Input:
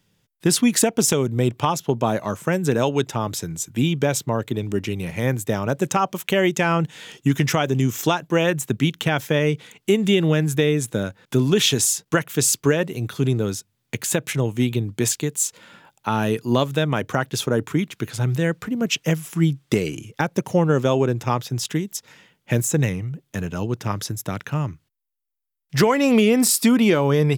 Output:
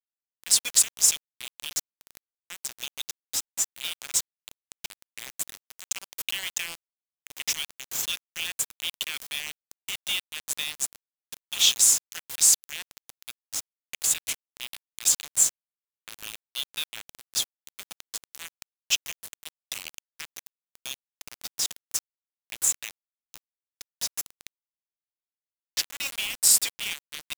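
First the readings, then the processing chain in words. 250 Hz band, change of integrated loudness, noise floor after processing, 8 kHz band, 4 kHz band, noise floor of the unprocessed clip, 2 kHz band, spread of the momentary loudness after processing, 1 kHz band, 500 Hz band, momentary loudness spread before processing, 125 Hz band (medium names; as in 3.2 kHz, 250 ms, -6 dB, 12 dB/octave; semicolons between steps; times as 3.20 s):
under -35 dB, -4.0 dB, under -85 dBFS, +2.0 dB, -0.5 dB, -73 dBFS, -9.0 dB, 22 LU, -22.0 dB, -33.0 dB, 10 LU, under -35 dB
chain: dynamic bell 7.3 kHz, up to +3 dB, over -37 dBFS, Q 3.4; inverse Chebyshev high-pass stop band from 450 Hz, stop band 80 dB; bit crusher 5-bit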